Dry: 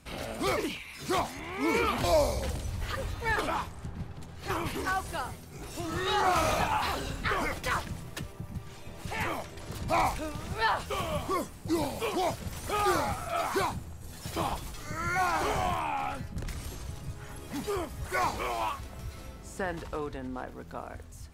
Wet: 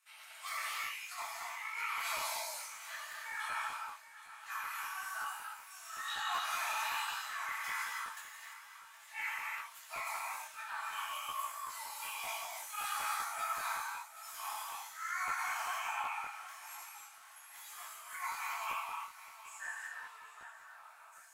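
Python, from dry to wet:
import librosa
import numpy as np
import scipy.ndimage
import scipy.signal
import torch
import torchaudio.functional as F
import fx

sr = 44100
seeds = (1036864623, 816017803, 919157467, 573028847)

y = fx.tremolo_shape(x, sr, shape='saw_down', hz=3.6, depth_pct=45)
y = scipy.signal.sosfilt(scipy.signal.bessel(8, 1600.0, 'highpass', norm='mag', fs=sr, output='sos'), y)
y = fx.peak_eq(y, sr, hz=4500.0, db=-7.0, octaves=1.4)
y = y + 0.56 * np.pad(y, (int(4.5 * sr / 1000.0), 0))[:len(y)]
y = fx.over_compress(y, sr, threshold_db=-38.0, ratio=-0.5)
y = fx.rev_gated(y, sr, seeds[0], gate_ms=370, shape='flat', drr_db=-5.5)
y = fx.noise_reduce_blind(y, sr, reduce_db=6)
y = fx.echo_feedback(y, sr, ms=768, feedback_pct=34, wet_db=-14.5)
y = fx.buffer_crackle(y, sr, first_s=0.83, period_s=0.19, block=512, kind='repeat')
y = fx.detune_double(y, sr, cents=39)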